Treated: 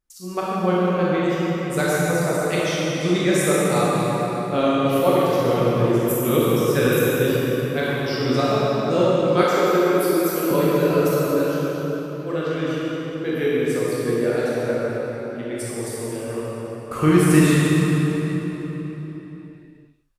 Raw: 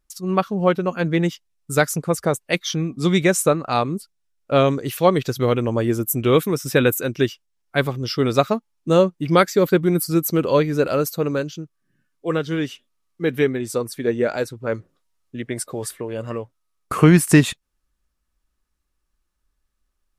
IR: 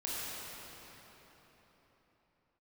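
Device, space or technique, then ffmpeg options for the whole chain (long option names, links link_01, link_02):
cave: -filter_complex "[0:a]aecho=1:1:156:0.133[link_01];[1:a]atrim=start_sample=2205[link_02];[link_01][link_02]afir=irnorm=-1:irlink=0,asettb=1/sr,asplit=3[link_03][link_04][link_05];[link_03]atrim=end=9.434[link_06];[link_04]atrim=start=9.43:end=10.51,asetpts=PTS-STARTPTS,afade=type=in:duration=0.004:curve=qsin,afade=type=out:start_time=1.076:duration=0.004:curve=qsin,highpass=270[link_07];[link_05]atrim=start=10.506[link_08];[link_06][link_07]acrossfade=duration=0.004:curve1=hsin:curve2=qsin[link_09];[link_09][link_08]acrossfade=duration=0.004:curve1=qsin:curve2=hsin,volume=-4dB"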